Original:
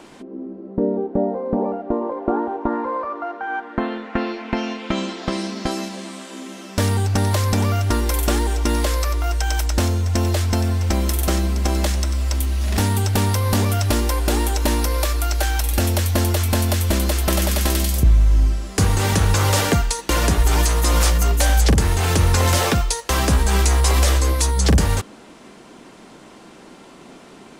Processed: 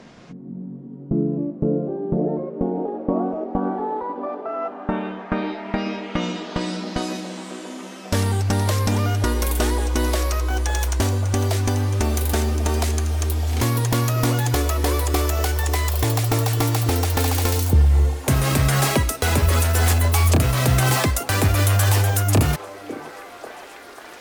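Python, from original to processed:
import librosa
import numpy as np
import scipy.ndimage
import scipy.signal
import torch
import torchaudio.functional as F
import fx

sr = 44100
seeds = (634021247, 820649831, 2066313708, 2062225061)

y = fx.speed_glide(x, sr, from_pct=68, to_pct=160)
y = fx.echo_stepped(y, sr, ms=545, hz=380.0, octaves=0.7, feedback_pct=70, wet_db=-7.5)
y = y * librosa.db_to_amplitude(-1.5)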